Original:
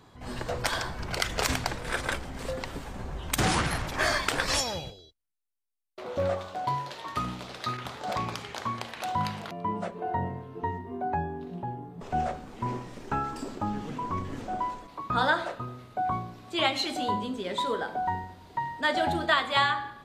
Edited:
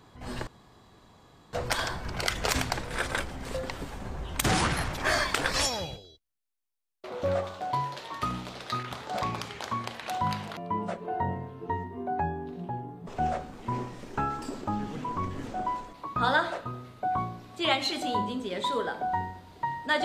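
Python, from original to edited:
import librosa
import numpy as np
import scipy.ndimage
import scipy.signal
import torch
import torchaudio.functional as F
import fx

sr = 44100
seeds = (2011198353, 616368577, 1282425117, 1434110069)

y = fx.edit(x, sr, fx.insert_room_tone(at_s=0.47, length_s=1.06), tone=tone)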